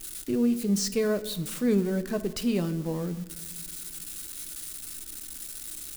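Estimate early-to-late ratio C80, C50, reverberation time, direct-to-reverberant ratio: 16.5 dB, 14.5 dB, 1.1 s, 10.0 dB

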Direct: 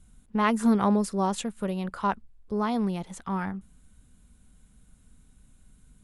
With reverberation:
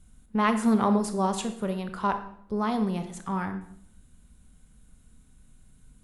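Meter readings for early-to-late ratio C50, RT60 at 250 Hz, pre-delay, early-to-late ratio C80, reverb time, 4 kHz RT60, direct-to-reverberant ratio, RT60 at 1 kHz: 10.0 dB, 0.85 s, 23 ms, 13.0 dB, 0.70 s, 0.55 s, 8.0 dB, 0.60 s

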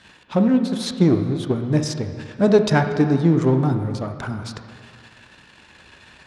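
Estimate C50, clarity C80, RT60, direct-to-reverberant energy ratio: 7.5 dB, 9.0 dB, 2.0 s, 6.0 dB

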